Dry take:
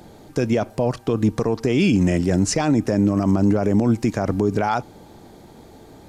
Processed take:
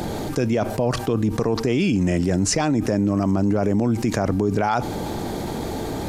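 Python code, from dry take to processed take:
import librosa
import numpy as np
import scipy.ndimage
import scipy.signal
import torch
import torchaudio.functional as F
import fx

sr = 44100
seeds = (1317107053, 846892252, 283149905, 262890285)

y = fx.env_flatten(x, sr, amount_pct=70)
y = y * librosa.db_to_amplitude(-4.0)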